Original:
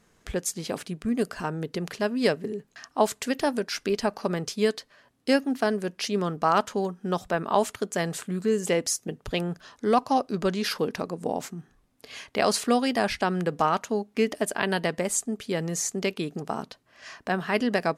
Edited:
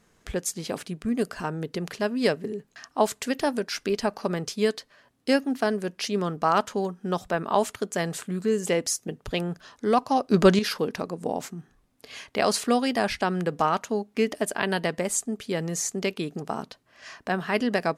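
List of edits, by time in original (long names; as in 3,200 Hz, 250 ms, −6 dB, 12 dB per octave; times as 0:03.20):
0:10.31–0:10.59: clip gain +9 dB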